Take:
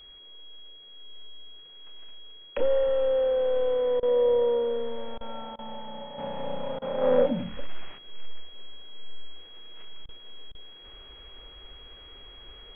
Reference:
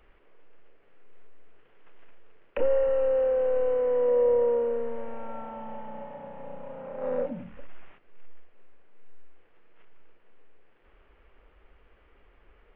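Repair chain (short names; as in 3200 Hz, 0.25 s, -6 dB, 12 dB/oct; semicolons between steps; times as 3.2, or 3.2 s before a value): notch 3300 Hz, Q 30; interpolate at 4/5.18/5.56/6.79/10.06/10.52, 27 ms; gain correction -8 dB, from 6.18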